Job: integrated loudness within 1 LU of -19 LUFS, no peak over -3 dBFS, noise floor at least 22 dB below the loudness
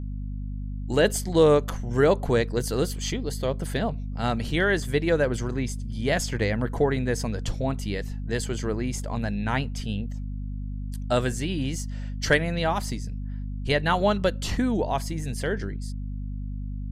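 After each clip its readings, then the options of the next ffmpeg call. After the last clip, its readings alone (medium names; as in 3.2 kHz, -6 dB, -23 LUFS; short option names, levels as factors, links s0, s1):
hum 50 Hz; highest harmonic 250 Hz; hum level -29 dBFS; loudness -26.5 LUFS; peak level -6.5 dBFS; loudness target -19.0 LUFS
-> -af "bandreject=f=50:t=h:w=4,bandreject=f=100:t=h:w=4,bandreject=f=150:t=h:w=4,bandreject=f=200:t=h:w=4,bandreject=f=250:t=h:w=4"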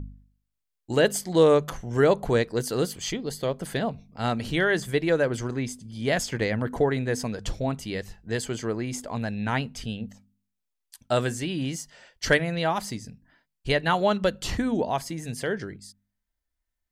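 hum not found; loudness -26.5 LUFS; peak level -7.0 dBFS; loudness target -19.0 LUFS
-> -af "volume=2.37,alimiter=limit=0.708:level=0:latency=1"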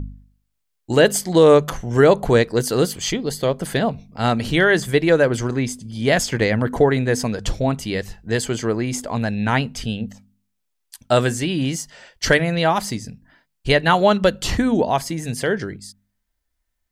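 loudness -19.5 LUFS; peak level -3.0 dBFS; noise floor -74 dBFS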